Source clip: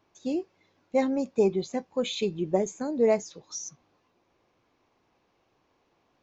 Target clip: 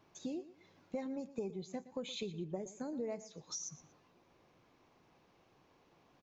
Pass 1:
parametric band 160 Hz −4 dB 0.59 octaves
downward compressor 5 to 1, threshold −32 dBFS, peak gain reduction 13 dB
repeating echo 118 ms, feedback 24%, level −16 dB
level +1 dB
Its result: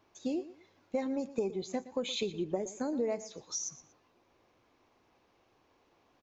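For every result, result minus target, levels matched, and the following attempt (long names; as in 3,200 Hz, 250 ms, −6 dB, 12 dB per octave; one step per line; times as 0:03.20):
downward compressor: peak gain reduction −8 dB; 125 Hz band −6.0 dB
parametric band 160 Hz −4 dB 0.59 octaves
downward compressor 5 to 1, threshold −41.5 dBFS, peak gain reduction 20.5 dB
repeating echo 118 ms, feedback 24%, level −16 dB
level +1 dB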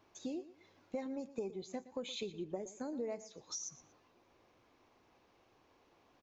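125 Hz band −6.0 dB
parametric band 160 Hz +6 dB 0.59 octaves
downward compressor 5 to 1, threshold −41.5 dBFS, peak gain reduction 21 dB
repeating echo 118 ms, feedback 24%, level −16 dB
level +1 dB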